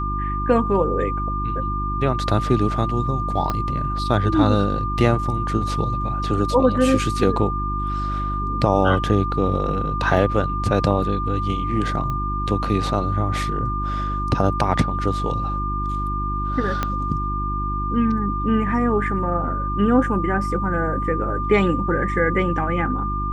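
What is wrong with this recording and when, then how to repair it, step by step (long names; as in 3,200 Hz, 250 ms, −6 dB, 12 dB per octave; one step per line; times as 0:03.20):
mains hum 50 Hz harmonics 7 −26 dBFS
whistle 1,200 Hz −25 dBFS
0:03.50: click −10 dBFS
0:12.10: click −16 dBFS
0:16.83: click −8 dBFS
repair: click removal
hum removal 50 Hz, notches 7
notch filter 1,200 Hz, Q 30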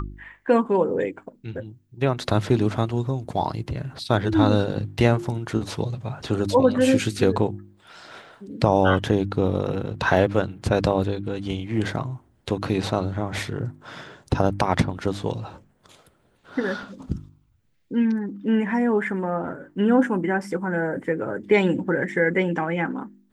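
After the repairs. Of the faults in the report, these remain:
0:03.50: click
0:16.83: click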